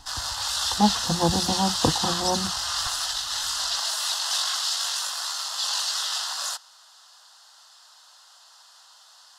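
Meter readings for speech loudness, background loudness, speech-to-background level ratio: −26.0 LKFS, −25.0 LKFS, −1.0 dB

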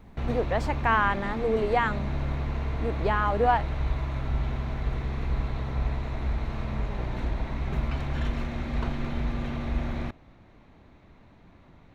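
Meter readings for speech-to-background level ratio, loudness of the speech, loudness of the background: 5.0 dB, −27.0 LKFS, −32.0 LKFS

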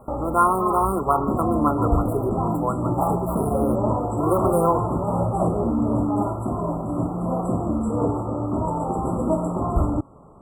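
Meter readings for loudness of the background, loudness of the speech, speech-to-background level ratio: −24.5 LKFS, −24.5 LKFS, 0.0 dB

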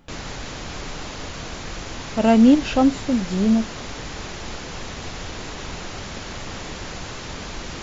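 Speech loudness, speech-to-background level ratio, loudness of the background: −18.0 LKFS, 15.0 dB, −33.0 LKFS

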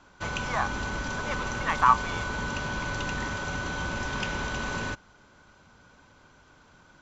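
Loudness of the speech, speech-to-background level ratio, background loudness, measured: −27.5 LKFS, 4.5 dB, −32.0 LKFS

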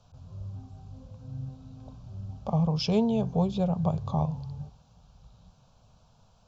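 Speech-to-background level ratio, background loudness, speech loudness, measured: 14.0 dB, −42.0 LKFS, −28.0 LKFS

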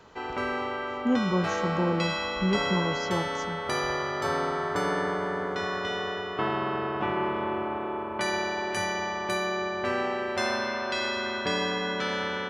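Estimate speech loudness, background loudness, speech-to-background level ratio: −30.0 LKFS, −29.5 LKFS, −0.5 dB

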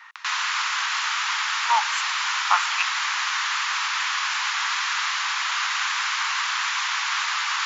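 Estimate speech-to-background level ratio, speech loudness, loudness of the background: −3.5 dB, −27.0 LKFS, −23.5 LKFS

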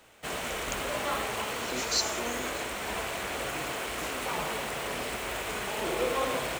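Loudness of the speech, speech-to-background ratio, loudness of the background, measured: −34.0 LKFS, −1.5 dB, −32.5 LKFS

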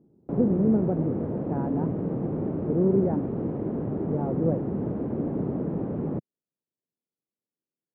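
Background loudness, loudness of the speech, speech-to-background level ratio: −30.0 LKFS, −28.0 LKFS, 2.0 dB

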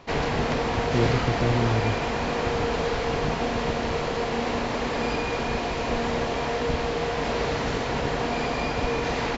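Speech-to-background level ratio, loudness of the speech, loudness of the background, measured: −2.5 dB, −29.0 LKFS, −26.5 LKFS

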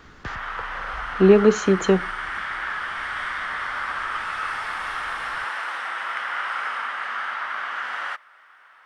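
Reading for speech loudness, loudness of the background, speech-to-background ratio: −18.0 LKFS, −28.5 LKFS, 10.5 dB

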